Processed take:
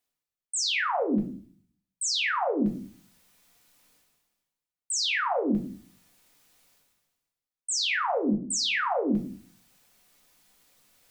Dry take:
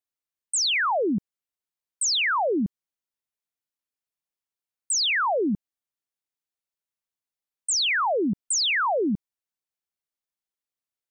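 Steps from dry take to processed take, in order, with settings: reverse; upward compressor, threshold -33 dBFS; reverse; shoebox room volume 360 m³, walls furnished, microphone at 1.9 m; gain -6.5 dB

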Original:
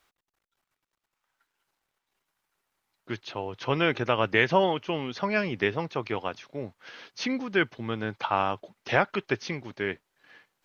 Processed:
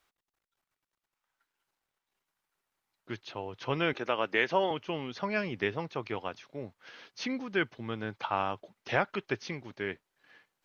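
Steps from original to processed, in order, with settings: 3.93–4.71 HPF 250 Hz 12 dB/oct; gain -5 dB

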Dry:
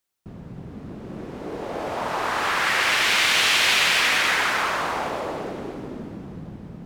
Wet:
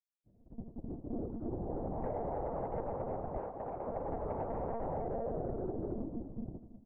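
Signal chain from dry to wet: steep low-pass 740 Hz 36 dB/oct; gate -34 dBFS, range -32 dB; 1.28–2.04 bell 550 Hz -13.5 dB 1.1 oct; soft clip -26.5 dBFS, distortion -18 dB; treble ducked by the level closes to 500 Hz, closed at -28 dBFS; de-hum 129.2 Hz, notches 5; monotone LPC vocoder at 8 kHz 230 Hz; compressor, threshold -39 dBFS, peak gain reduction 9.5 dB; 3.38–3.87 low shelf 250 Hz -11 dB; echo 0.562 s -21 dB; gain +5 dB

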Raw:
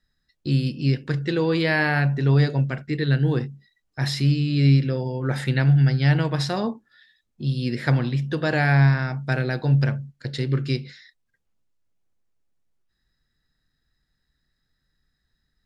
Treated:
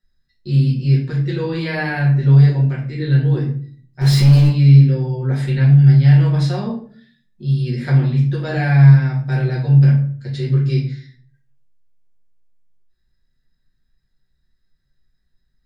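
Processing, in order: low shelf 200 Hz +3 dB; 4.01–4.48 power-law curve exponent 0.5; shoebox room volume 42 m³, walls mixed, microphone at 1.2 m; gain -8 dB

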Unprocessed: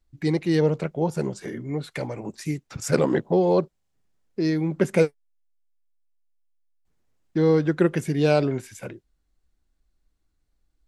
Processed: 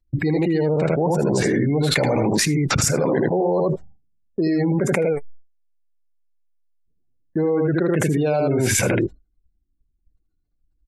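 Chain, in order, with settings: spectral gate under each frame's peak -30 dB strong; expander -47 dBFS; dynamic EQ 710 Hz, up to +6 dB, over -34 dBFS, Q 1.1; on a send: echo 79 ms -5 dB; on the sum: fast leveller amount 100%; gain -7.5 dB

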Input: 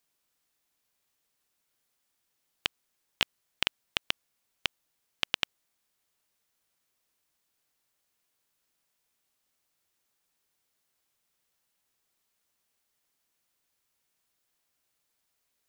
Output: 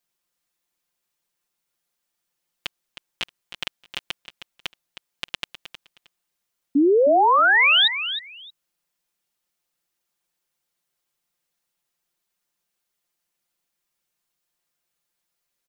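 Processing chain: comb 5.7 ms, depth 87%; painted sound rise, 6.75–7.88, 270–3900 Hz -12 dBFS; feedback echo 0.313 s, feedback 18%, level -11 dB; gain -4 dB

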